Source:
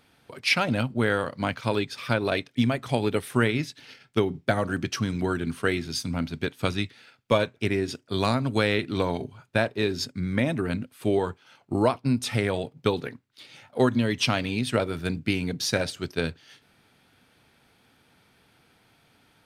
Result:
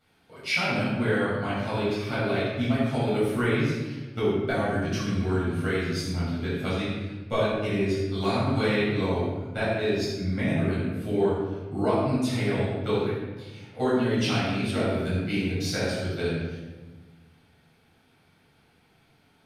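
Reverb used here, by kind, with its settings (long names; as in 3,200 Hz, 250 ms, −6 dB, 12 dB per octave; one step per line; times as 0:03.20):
rectangular room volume 870 cubic metres, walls mixed, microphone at 7.2 metres
level −14.5 dB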